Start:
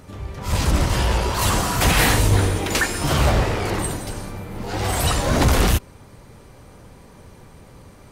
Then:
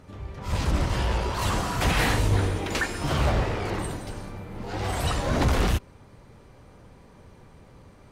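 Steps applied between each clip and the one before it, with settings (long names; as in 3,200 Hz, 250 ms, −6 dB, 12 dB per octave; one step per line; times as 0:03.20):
high-shelf EQ 7,300 Hz −11.5 dB
level −5.5 dB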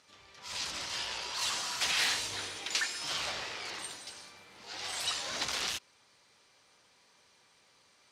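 resonant band-pass 5,000 Hz, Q 1.2
level +4 dB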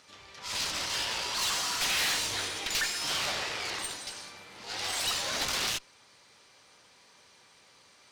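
tube saturation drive 34 dB, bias 0.55
level +8.5 dB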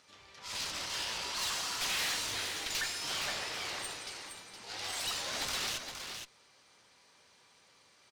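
single-tap delay 466 ms −7 dB
level −5.5 dB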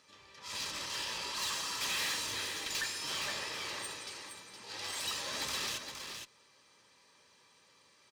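notch comb filter 720 Hz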